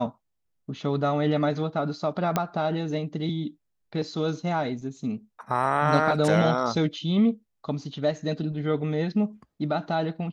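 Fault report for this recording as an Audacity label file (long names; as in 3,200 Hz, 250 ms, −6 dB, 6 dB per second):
2.360000	2.360000	click −10 dBFS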